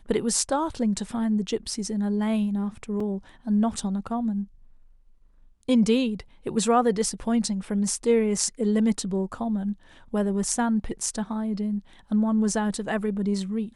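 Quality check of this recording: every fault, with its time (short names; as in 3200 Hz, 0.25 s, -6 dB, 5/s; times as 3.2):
3 gap 3.8 ms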